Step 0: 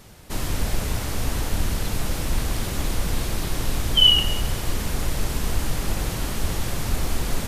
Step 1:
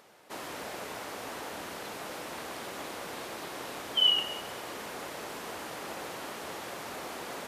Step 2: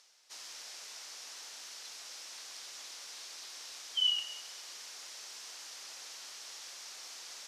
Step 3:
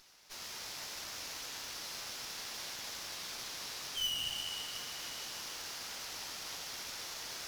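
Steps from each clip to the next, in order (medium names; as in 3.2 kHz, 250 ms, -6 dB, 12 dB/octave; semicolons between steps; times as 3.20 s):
high-pass 460 Hz 12 dB/octave; upward compressor, threshold -53 dBFS; treble shelf 3 kHz -11.5 dB; trim -3 dB
reverse; upward compressor, threshold -51 dBFS; reverse; band-pass filter 5.6 kHz, Q 2.4; trim +5.5 dB
saturation -37.5 dBFS, distortion -4 dB; plate-style reverb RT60 3.9 s, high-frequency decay 0.85×, DRR -1 dB; sliding maximum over 3 samples; trim +2.5 dB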